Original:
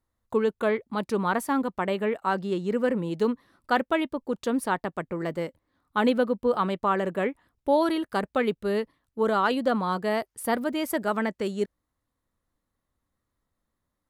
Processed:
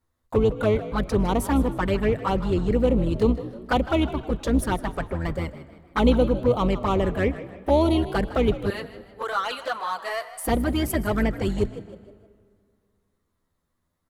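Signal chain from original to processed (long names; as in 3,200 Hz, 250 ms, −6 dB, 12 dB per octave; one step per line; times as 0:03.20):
sub-octave generator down 2 octaves, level −1 dB
0:08.70–0:10.44: high-pass filter 920 Hz 12 dB per octave
in parallel at −3.5 dB: hard clipping −26.5 dBFS, distortion −6 dB
on the sum: flanger swept by the level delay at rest 12 ms, full sweep at −18 dBFS
echo with shifted repeats 156 ms, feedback 40%, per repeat +62 Hz, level −15 dB
on a send at −19.5 dB: convolution reverb RT60 2.2 s, pre-delay 70 ms
on the sum: level +2 dB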